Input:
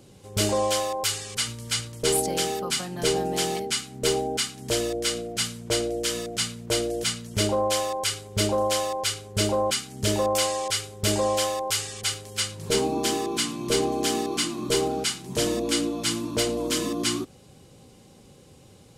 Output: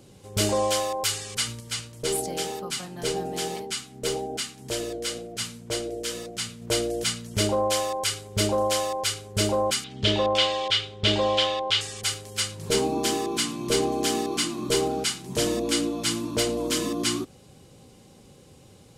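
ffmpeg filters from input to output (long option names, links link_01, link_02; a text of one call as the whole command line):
ffmpeg -i in.wav -filter_complex "[0:a]asettb=1/sr,asplit=3[link_01][link_02][link_03];[link_01]atrim=end=1.604[link_04];[link_02]atrim=start=1.6:end=6.62,asetpts=PTS-STARTPTS,afade=type=in:duration=0.004:curve=qsin,afade=type=out:start_time=5.016:duration=0.004:curve=qsin,flanger=delay=5.1:depth=7.7:regen=74:speed=1.9:shape=sinusoidal[link_05];[link_03]atrim=start=6.616[link_06];[link_04][link_05]acrossfade=duration=0.004:curve1=hsin:curve2=qsin[link_07];[link_07][link_06]acrossfade=duration=0.004:curve1=qsin:curve2=hsin,asettb=1/sr,asplit=3[link_08][link_09][link_10];[link_08]atrim=end=9.844[link_11];[link_09]atrim=start=9.84:end=11.81,asetpts=PTS-STARTPTS,afade=type=in:duration=0.004:curve=qsin,afade=type=out:start_time=1.966:duration=0.004:curve=qsin,lowpass=frequency=3400:width_type=q:width=3.1[link_12];[link_10]atrim=start=11.806[link_13];[link_11][link_12]acrossfade=duration=0.004:curve1=hsin:curve2=qsin[link_14];[link_14][link_13]acrossfade=duration=0.004:curve1=qsin:curve2=hsin" out.wav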